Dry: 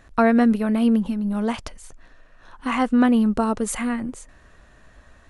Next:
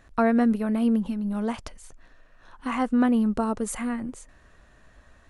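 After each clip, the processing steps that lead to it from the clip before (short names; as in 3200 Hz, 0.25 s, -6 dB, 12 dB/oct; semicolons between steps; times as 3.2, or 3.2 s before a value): dynamic EQ 3300 Hz, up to -4 dB, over -38 dBFS, Q 0.74; gain -4 dB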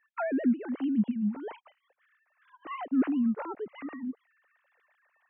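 sine-wave speech; gain -6 dB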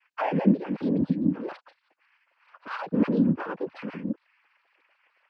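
noise vocoder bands 8; gain +4 dB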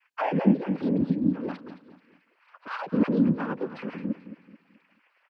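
feedback echo 0.217 s, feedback 37%, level -13 dB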